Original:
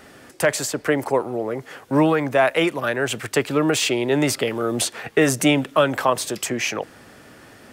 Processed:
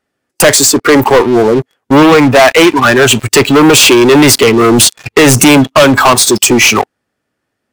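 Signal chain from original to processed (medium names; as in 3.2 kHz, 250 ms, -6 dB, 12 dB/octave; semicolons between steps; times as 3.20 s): one-sided wavefolder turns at -10 dBFS; spectral noise reduction 20 dB; waveshaping leveller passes 5; trim +5 dB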